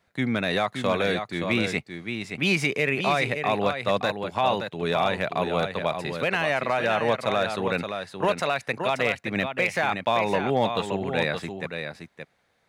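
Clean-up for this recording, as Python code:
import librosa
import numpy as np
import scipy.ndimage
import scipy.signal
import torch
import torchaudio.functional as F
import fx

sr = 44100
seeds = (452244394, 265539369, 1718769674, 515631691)

y = fx.fix_declip(x, sr, threshold_db=-13.0)
y = fx.fix_echo_inverse(y, sr, delay_ms=572, level_db=-7.0)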